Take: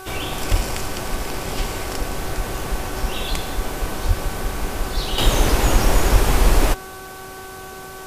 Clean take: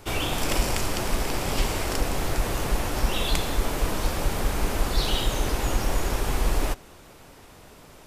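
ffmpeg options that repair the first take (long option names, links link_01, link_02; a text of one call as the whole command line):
ffmpeg -i in.wav -filter_complex "[0:a]bandreject=frequency=379.3:width_type=h:width=4,bandreject=frequency=758.6:width_type=h:width=4,bandreject=frequency=1137.9:width_type=h:width=4,bandreject=frequency=1517.2:width_type=h:width=4,asplit=3[link_01][link_02][link_03];[link_01]afade=type=out:start_time=0.5:duration=0.02[link_04];[link_02]highpass=frequency=140:width=0.5412,highpass=frequency=140:width=1.3066,afade=type=in:start_time=0.5:duration=0.02,afade=type=out:start_time=0.62:duration=0.02[link_05];[link_03]afade=type=in:start_time=0.62:duration=0.02[link_06];[link_04][link_05][link_06]amix=inputs=3:normalize=0,asplit=3[link_07][link_08][link_09];[link_07]afade=type=out:start_time=4.07:duration=0.02[link_10];[link_08]highpass=frequency=140:width=0.5412,highpass=frequency=140:width=1.3066,afade=type=in:start_time=4.07:duration=0.02,afade=type=out:start_time=4.19:duration=0.02[link_11];[link_09]afade=type=in:start_time=4.19:duration=0.02[link_12];[link_10][link_11][link_12]amix=inputs=3:normalize=0,asplit=3[link_13][link_14][link_15];[link_13]afade=type=out:start_time=6.12:duration=0.02[link_16];[link_14]highpass=frequency=140:width=0.5412,highpass=frequency=140:width=1.3066,afade=type=in:start_time=6.12:duration=0.02,afade=type=out:start_time=6.24:duration=0.02[link_17];[link_15]afade=type=in:start_time=6.24:duration=0.02[link_18];[link_16][link_17][link_18]amix=inputs=3:normalize=0,afwtdn=0.0071,asetnsamples=nb_out_samples=441:pad=0,asendcmd='5.18 volume volume -8.5dB',volume=0dB" out.wav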